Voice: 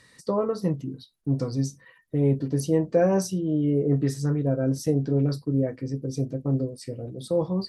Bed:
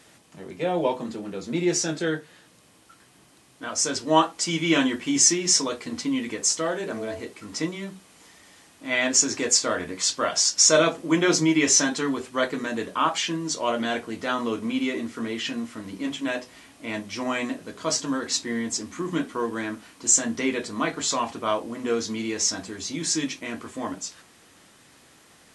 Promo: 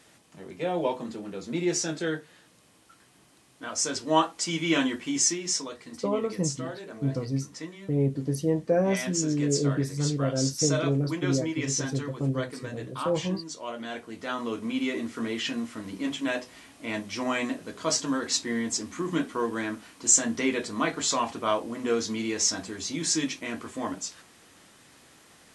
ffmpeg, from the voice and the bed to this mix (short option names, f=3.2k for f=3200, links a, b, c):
-filter_complex "[0:a]adelay=5750,volume=-3dB[a];[1:a]volume=6.5dB,afade=t=out:st=4.84:d=0.94:silence=0.421697,afade=t=in:st=13.78:d=1.41:silence=0.316228[b];[a][b]amix=inputs=2:normalize=0"